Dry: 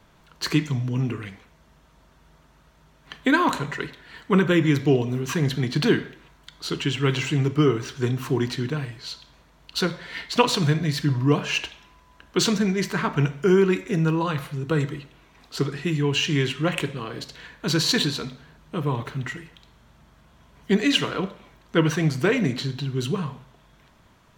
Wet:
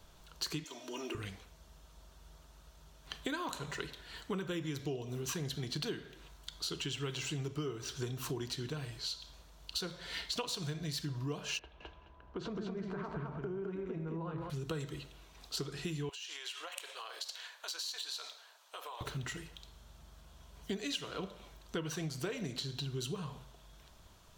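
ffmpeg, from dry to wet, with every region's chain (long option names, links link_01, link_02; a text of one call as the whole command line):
ffmpeg -i in.wav -filter_complex "[0:a]asettb=1/sr,asplit=3[link_01][link_02][link_03];[link_01]atrim=end=0.644[link_04];[link_02]atrim=start=0.64:end=1.15,asetpts=PTS-STARTPTS,afade=type=in:duration=0.004:curve=qsin,afade=type=out:start_time=0.506:duration=0.004:curve=qsin,highpass=frequency=340:width=0.5412,highpass=frequency=340:width=1.3066,aecho=1:1:3.2:0.63,atrim=end_sample=22491[link_05];[link_03]atrim=start=1.146[link_06];[link_04][link_05]acrossfade=duration=0.004:curve1=hsin:curve2=qsin[link_07];[link_07][link_06]acrossfade=duration=0.004:curve1=qsin:curve2=hsin,asettb=1/sr,asplit=3[link_08][link_09][link_10];[link_08]atrim=end=11.594[link_11];[link_09]atrim=start=11.59:end=14.5,asetpts=PTS-STARTPTS,afade=type=in:duration=0.004:curve=qsin,afade=type=out:start_time=2.906:duration=0.004:curve=qsin,lowpass=1200,acompressor=threshold=-29dB:ratio=5:attack=3.2:release=140:knee=1:detection=peak,aecho=1:1:212|424|636:0.708|0.135|0.0256,atrim=end_sample=128331[link_12];[link_10]atrim=start=14.496[link_13];[link_11][link_12]acrossfade=duration=0.004:curve1=hsin:curve2=qsin[link_14];[link_14][link_13]acrossfade=duration=0.004:curve1=qsin:curve2=hsin,asettb=1/sr,asplit=3[link_15][link_16][link_17];[link_15]atrim=end=16.094[link_18];[link_16]atrim=start=16.09:end=19.01,asetpts=PTS-STARTPTS,afade=type=in:duration=0.004:curve=qsin,afade=type=out:start_time=2.916:duration=0.004:curve=qsin,highpass=frequency=650:width=0.5412,highpass=frequency=650:width=1.3066,acompressor=threshold=-35dB:ratio=16:attack=3.2:release=140:knee=1:detection=peak[link_19];[link_17]atrim=start=19.006[link_20];[link_18][link_19]acrossfade=duration=0.004:curve1=hsin:curve2=qsin[link_21];[link_21][link_20]acrossfade=duration=0.004:curve1=qsin:curve2=hsin,equalizer=frequency=125:width_type=o:width=1:gain=-8,equalizer=frequency=250:width_type=o:width=1:gain=-11,equalizer=frequency=500:width_type=o:width=1:gain=-4,equalizer=frequency=1000:width_type=o:width=1:gain=-6,equalizer=frequency=2000:width_type=o:width=1:gain=-11,acompressor=threshold=-39dB:ratio=6,volume=3dB" out.wav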